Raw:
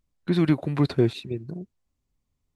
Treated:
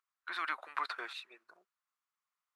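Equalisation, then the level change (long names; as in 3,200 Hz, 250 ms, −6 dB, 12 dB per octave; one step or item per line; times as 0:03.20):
four-pole ladder high-pass 1,100 Hz, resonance 55%
high-shelf EQ 2,400 Hz −9 dB
+8.5 dB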